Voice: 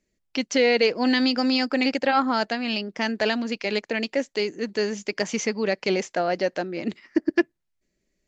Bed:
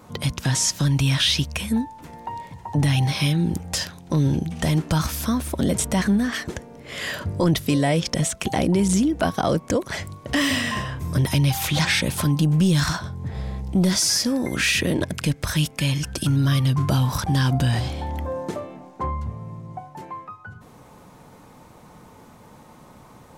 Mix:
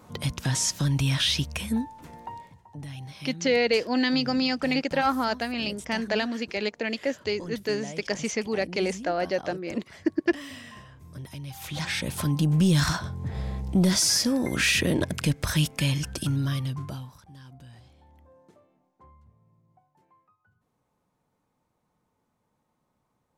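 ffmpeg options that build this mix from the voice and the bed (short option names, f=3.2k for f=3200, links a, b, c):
-filter_complex "[0:a]adelay=2900,volume=-3dB[a];[1:a]volume=13dB,afade=t=out:st=2.17:d=0.49:silence=0.177828,afade=t=in:st=11.47:d=1.26:silence=0.133352,afade=t=out:st=15.77:d=1.38:silence=0.0501187[b];[a][b]amix=inputs=2:normalize=0"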